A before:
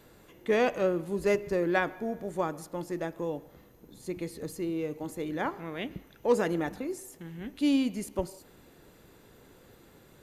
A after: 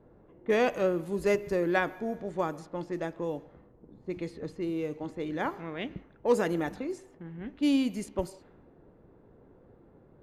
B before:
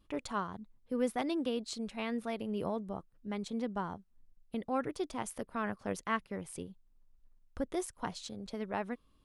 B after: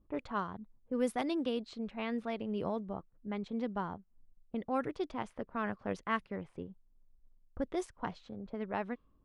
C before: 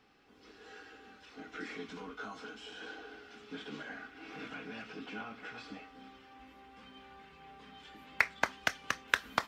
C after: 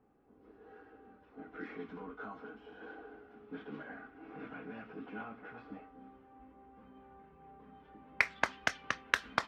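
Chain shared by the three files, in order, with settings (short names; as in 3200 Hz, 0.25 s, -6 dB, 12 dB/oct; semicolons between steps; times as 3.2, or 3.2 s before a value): low-pass opened by the level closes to 720 Hz, open at -27.5 dBFS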